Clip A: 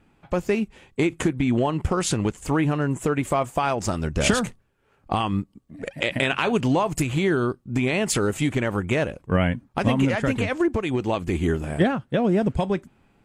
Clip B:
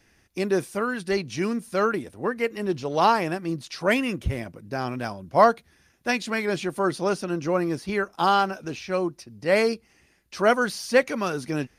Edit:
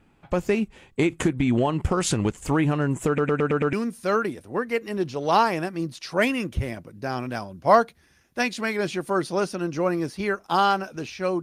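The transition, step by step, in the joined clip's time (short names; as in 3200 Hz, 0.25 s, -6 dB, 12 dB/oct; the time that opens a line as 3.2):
clip A
3.07 stutter in place 0.11 s, 6 plays
3.73 switch to clip B from 1.42 s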